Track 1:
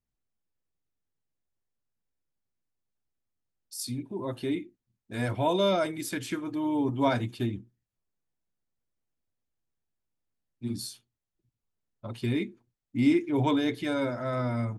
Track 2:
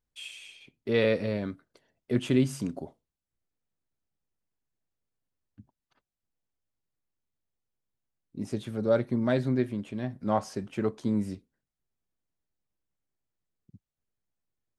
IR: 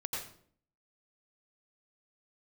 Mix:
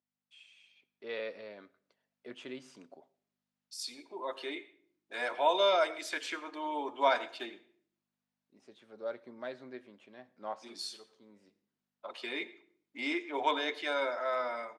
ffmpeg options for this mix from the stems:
-filter_complex "[0:a]highpass=430,aeval=exprs='val(0)+0.000398*(sin(2*PI*50*n/s)+sin(2*PI*2*50*n/s)/2+sin(2*PI*3*50*n/s)/3+sin(2*PI*4*50*n/s)/4+sin(2*PI*5*50*n/s)/5)':c=same,volume=-4.5dB,asplit=3[a][b][c];[b]volume=-16dB[d];[1:a]adelay=150,volume=-16.5dB,asplit=2[e][f];[f]volume=-23dB[g];[c]apad=whole_len=658622[h];[e][h]sidechaincompress=threshold=-54dB:ratio=10:attack=31:release=1110[i];[2:a]atrim=start_sample=2205[j];[d][g]amix=inputs=2:normalize=0[k];[k][j]afir=irnorm=-1:irlink=0[l];[a][i][l]amix=inputs=3:normalize=0,dynaudnorm=f=280:g=5:m=5.5dB,highpass=520,lowpass=5.2k"

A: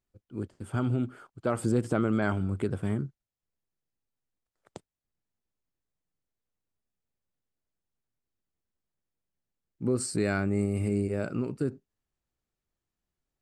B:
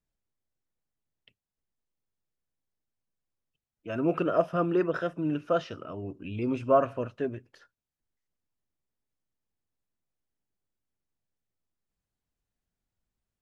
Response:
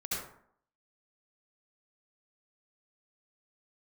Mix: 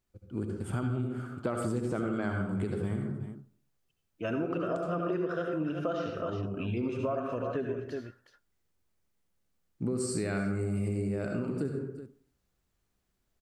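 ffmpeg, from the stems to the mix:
-filter_complex "[0:a]volume=1.5dB,asplit=3[a][b][c];[b]volume=-4dB[d];[c]volume=-18dB[e];[1:a]alimiter=limit=-18.5dB:level=0:latency=1:release=446,adelay=350,volume=1dB,asplit=3[f][g][h];[g]volume=-3.5dB[i];[h]volume=-7dB[j];[2:a]atrim=start_sample=2205[k];[d][i]amix=inputs=2:normalize=0[l];[l][k]afir=irnorm=-1:irlink=0[m];[e][j]amix=inputs=2:normalize=0,aecho=0:1:371:1[n];[a][f][m][n]amix=inputs=4:normalize=0,acompressor=threshold=-30dB:ratio=4"

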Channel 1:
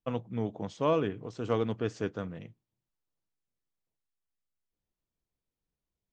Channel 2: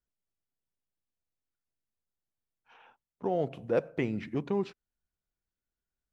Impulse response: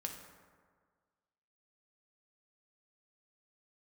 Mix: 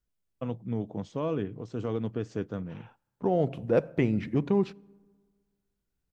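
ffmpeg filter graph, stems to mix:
-filter_complex "[0:a]equalizer=f=150:w=0.32:g=8,alimiter=limit=-16dB:level=0:latency=1:release=110,adelay=350,volume=-4.5dB[a];[1:a]lowshelf=f=270:g=8,volume=1dB,asplit=2[b][c];[c]volume=-19.5dB[d];[2:a]atrim=start_sample=2205[e];[d][e]afir=irnorm=-1:irlink=0[f];[a][b][f]amix=inputs=3:normalize=0"

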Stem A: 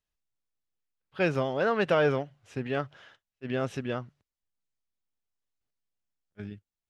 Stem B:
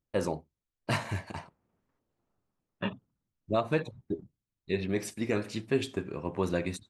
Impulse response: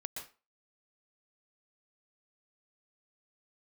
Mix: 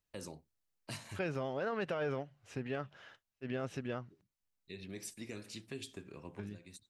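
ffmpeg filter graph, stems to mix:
-filter_complex "[0:a]equalizer=f=3.4k:w=7.8:g=-4,alimiter=limit=-20dB:level=0:latency=1:release=13,volume=-0.5dB,asplit=2[a][b];[1:a]highshelf=f=2.2k:g=10.5,acrossover=split=370|3000[c][d][e];[d]acompressor=threshold=-41dB:ratio=2[f];[c][f][e]amix=inputs=3:normalize=0,volume=-11dB[g];[b]apad=whole_len=304145[h];[g][h]sidechaincompress=threshold=-49dB:ratio=8:attack=38:release=689[i];[a][i]amix=inputs=2:normalize=0,acompressor=threshold=-47dB:ratio=1.5"

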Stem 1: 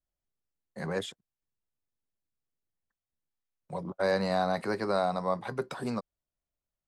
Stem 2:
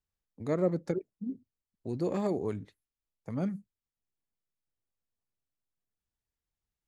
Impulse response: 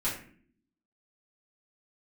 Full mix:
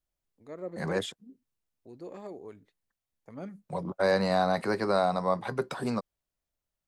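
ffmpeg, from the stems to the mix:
-filter_complex "[0:a]volume=2.5dB[a];[1:a]bass=f=250:g=-10,treble=f=4k:g=-3,dynaudnorm=f=260:g=7:m=14dB,volume=-5dB,afade=t=out:st=0.95:d=0.29:silence=0.334965,afade=t=in:st=3.08:d=0.65:silence=0.354813[b];[a][b]amix=inputs=2:normalize=0"

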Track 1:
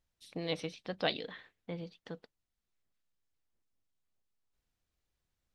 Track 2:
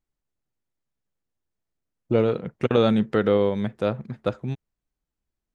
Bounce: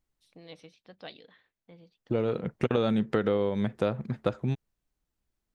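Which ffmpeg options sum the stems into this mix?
-filter_complex "[0:a]volume=-12dB,asplit=2[a][b];[1:a]volume=2dB[c];[b]apad=whole_len=244347[d];[c][d]sidechaincompress=threshold=-55dB:ratio=8:attack=16:release=851[e];[a][e]amix=inputs=2:normalize=0,acompressor=threshold=-23dB:ratio=5"

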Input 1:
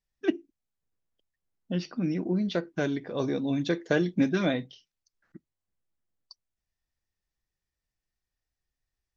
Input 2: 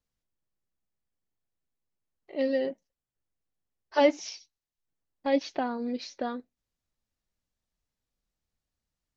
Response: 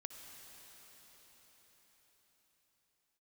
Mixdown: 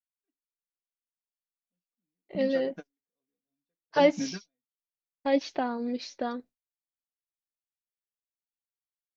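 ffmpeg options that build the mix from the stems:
-filter_complex "[0:a]aecho=1:1:4.2:0.5,flanger=delay=5.2:depth=6.2:regen=-54:speed=0.49:shape=triangular,volume=-7dB[a];[1:a]deesser=0.8,agate=range=-33dB:threshold=-47dB:ratio=3:detection=peak,volume=0.5dB,asplit=2[b][c];[c]apad=whole_len=404425[d];[a][d]sidechaingate=range=-52dB:threshold=-42dB:ratio=16:detection=peak[e];[e][b]amix=inputs=2:normalize=0"

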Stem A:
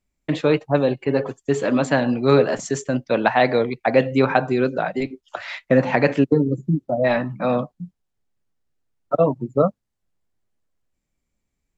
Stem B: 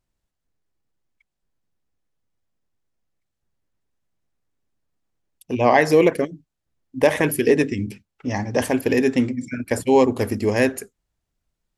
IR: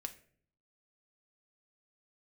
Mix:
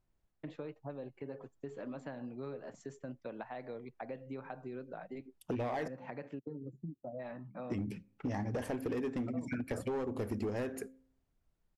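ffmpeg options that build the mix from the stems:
-filter_complex "[0:a]acompressor=threshold=-21dB:ratio=6,adelay=150,volume=-18.5dB[a];[1:a]acompressor=threshold=-27dB:ratio=3,asoftclip=type=hard:threshold=-24.5dB,bandreject=f=263.3:t=h:w=4,bandreject=f=526.6:t=h:w=4,volume=-1.5dB,asplit=3[b][c][d];[b]atrim=end=5.88,asetpts=PTS-STARTPTS,afade=t=out:st=5.876:d=0.004:c=hsin[e];[c]atrim=start=5.88:end=7.7,asetpts=PTS-STARTPTS,volume=0[f];[d]atrim=start=7.7,asetpts=PTS-STARTPTS,afade=t=in:d=0.004:c=hsin[g];[e][f][g]concat=n=3:v=0:a=1,asplit=2[h][i];[i]volume=-12.5dB[j];[2:a]atrim=start_sample=2205[k];[j][k]afir=irnorm=-1:irlink=0[l];[a][h][l]amix=inputs=3:normalize=0,highshelf=f=2.4k:g=-10.5,acompressor=threshold=-34dB:ratio=4"

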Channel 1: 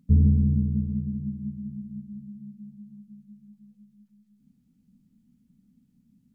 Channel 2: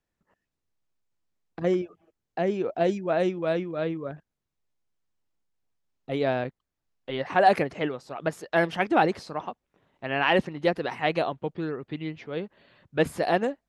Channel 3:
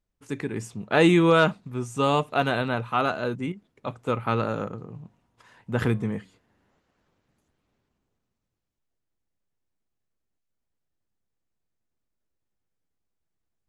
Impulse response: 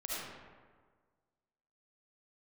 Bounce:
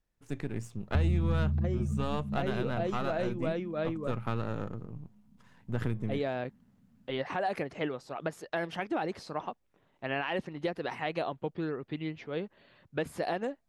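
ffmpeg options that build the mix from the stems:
-filter_complex "[0:a]equalizer=f=95:t=o:w=1.2:g=9,adelay=850,volume=-6.5dB,asplit=2[a][b];[b]volume=-6.5dB[c];[1:a]alimiter=limit=-16.5dB:level=0:latency=1:release=313,volume=-2.5dB[d];[2:a]aeval=exprs='if(lt(val(0),0),0.447*val(0),val(0))':c=same,lowshelf=f=190:g=9.5,volume=-6.5dB[e];[3:a]atrim=start_sample=2205[f];[c][f]afir=irnorm=-1:irlink=0[g];[a][d][e][g]amix=inputs=4:normalize=0,acompressor=threshold=-28dB:ratio=3"

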